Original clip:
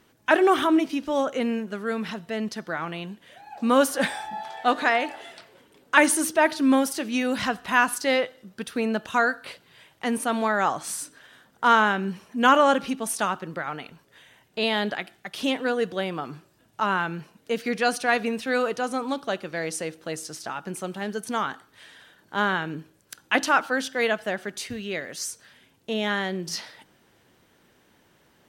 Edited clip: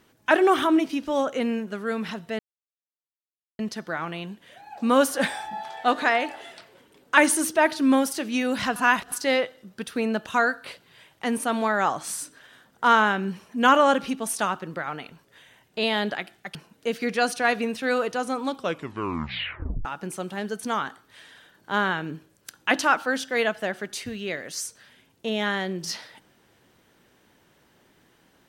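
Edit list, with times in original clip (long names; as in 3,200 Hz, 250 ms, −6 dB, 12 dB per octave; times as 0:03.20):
0:02.39: splice in silence 1.20 s
0:07.56–0:07.92: reverse
0:15.35–0:17.19: remove
0:19.17: tape stop 1.32 s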